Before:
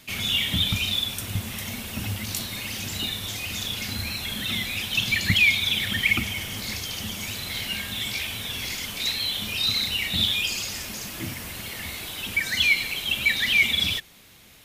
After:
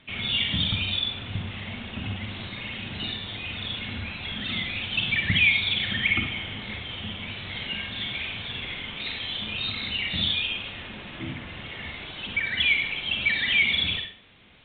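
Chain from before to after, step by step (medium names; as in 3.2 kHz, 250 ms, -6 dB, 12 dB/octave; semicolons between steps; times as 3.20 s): on a send at -3.5 dB: reverberation RT60 0.45 s, pre-delay 43 ms; on the sum: resampled via 8 kHz; trim -2.5 dB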